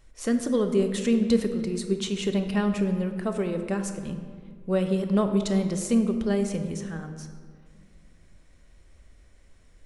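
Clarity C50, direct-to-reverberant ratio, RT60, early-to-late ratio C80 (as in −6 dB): 8.0 dB, 6.0 dB, 1.9 s, 9.5 dB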